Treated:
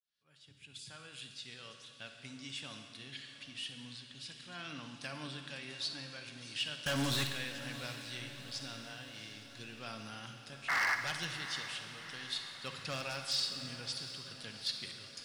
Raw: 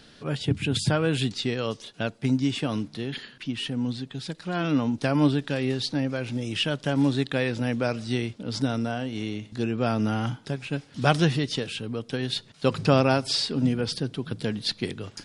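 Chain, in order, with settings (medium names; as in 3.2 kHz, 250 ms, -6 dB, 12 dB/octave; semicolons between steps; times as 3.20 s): fade-in on the opening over 2.84 s; 10.68–10.95 s: painted sound noise 620–2200 Hz -16 dBFS; amplifier tone stack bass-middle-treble 5-5-5; feedback comb 560 Hz, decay 0.17 s, harmonics all, mix 60%; wavefolder -31 dBFS; bass shelf 460 Hz -7.5 dB; 6.86–7.27 s: waveshaping leveller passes 5; echo that smears into a reverb 740 ms, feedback 59%, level -12.5 dB; on a send at -6 dB: reverberation RT60 1.6 s, pre-delay 45 ms; on the sum: trim +5.5 dB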